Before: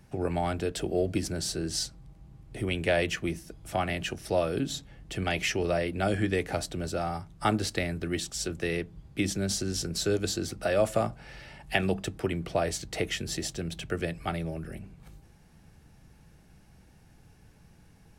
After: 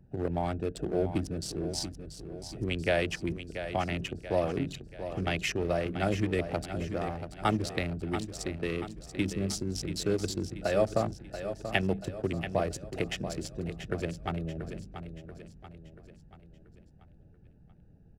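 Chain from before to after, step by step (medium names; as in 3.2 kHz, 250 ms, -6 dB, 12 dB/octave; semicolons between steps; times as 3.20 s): local Wiener filter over 41 samples; feedback delay 684 ms, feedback 47%, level -10 dB; trim -1 dB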